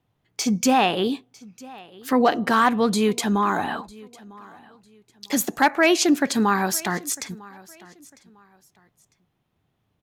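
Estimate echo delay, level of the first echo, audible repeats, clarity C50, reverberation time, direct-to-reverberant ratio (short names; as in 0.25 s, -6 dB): 0.951 s, -22.5 dB, 2, none, none, none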